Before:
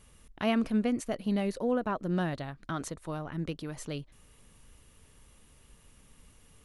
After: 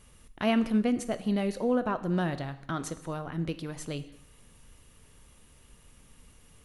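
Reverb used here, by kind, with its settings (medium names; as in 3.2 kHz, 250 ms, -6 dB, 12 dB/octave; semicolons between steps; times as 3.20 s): gated-style reverb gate 280 ms falling, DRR 11 dB; trim +1.5 dB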